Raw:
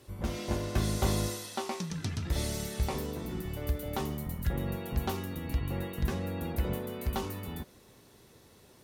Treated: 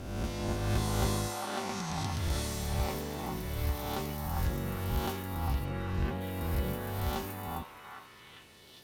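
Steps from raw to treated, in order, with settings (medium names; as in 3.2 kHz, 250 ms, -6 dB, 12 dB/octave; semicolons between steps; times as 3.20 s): reverse spectral sustain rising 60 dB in 1.25 s; 5.64–6.20 s: low-pass 4.6 kHz -> 2.5 kHz 12 dB/octave; repeats whose band climbs or falls 402 ms, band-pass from 930 Hz, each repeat 0.7 oct, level -0.5 dB; trim -4 dB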